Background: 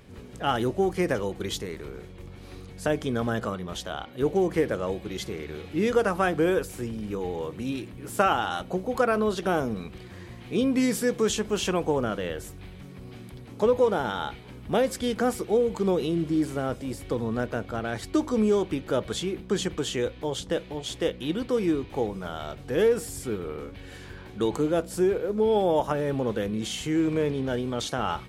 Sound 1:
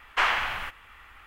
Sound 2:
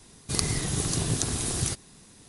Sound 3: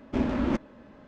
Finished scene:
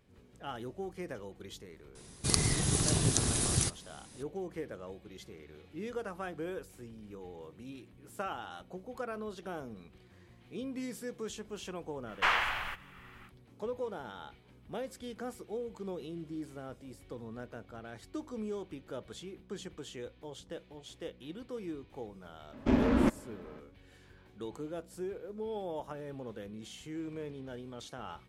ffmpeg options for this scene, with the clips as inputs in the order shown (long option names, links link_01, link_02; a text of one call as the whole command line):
ffmpeg -i bed.wav -i cue0.wav -i cue1.wav -i cue2.wav -filter_complex "[0:a]volume=-16dB[link_01];[2:a]atrim=end=2.28,asetpts=PTS-STARTPTS,volume=-1.5dB,afade=type=in:duration=0.004:curve=hsin,afade=type=out:start_time=2.276:duration=0.004:curve=hsin,adelay=1950[link_02];[1:a]atrim=end=1.26,asetpts=PTS-STARTPTS,volume=-4.5dB,afade=type=in:duration=0.05,afade=type=out:start_time=1.21:duration=0.05,adelay=12050[link_03];[3:a]atrim=end=1.07,asetpts=PTS-STARTPTS,afade=type=in:duration=0.004:curve=hsin,afade=type=out:start_time=1.066:duration=0.004:curve=hsin,adelay=22530[link_04];[link_01][link_02][link_03][link_04]amix=inputs=4:normalize=0" out.wav